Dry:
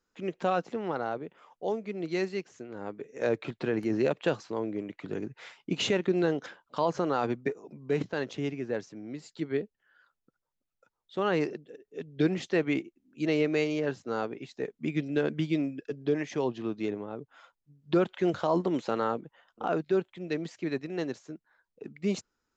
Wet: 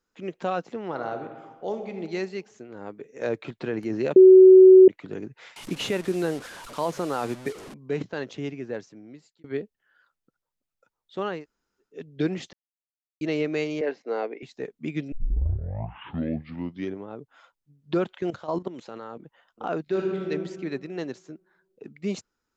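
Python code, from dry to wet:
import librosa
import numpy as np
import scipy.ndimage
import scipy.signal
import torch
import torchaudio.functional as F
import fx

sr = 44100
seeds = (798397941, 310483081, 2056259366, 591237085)

y = fx.reverb_throw(x, sr, start_s=0.88, length_s=1.07, rt60_s=1.4, drr_db=5.5)
y = fx.delta_mod(y, sr, bps=64000, step_db=-36.0, at=(5.56, 7.74))
y = fx.cabinet(y, sr, low_hz=260.0, low_slope=24, high_hz=5000.0, hz=(470.0, 690.0, 1300.0, 2100.0, 3400.0), db=(6, 5, -5, 10, -6), at=(13.81, 14.43))
y = fx.level_steps(y, sr, step_db=13, at=(18.17, 19.19), fade=0.02)
y = fx.reverb_throw(y, sr, start_s=19.83, length_s=0.46, rt60_s=1.8, drr_db=-3.0)
y = fx.edit(y, sr, fx.bleep(start_s=4.16, length_s=0.72, hz=375.0, db=-7.0),
    fx.fade_out_span(start_s=8.5, length_s=0.94, curve='qsin'),
    fx.room_tone_fill(start_s=11.34, length_s=0.55, crossfade_s=0.24),
    fx.silence(start_s=12.53, length_s=0.68),
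    fx.tape_start(start_s=15.12, length_s=1.94), tone=tone)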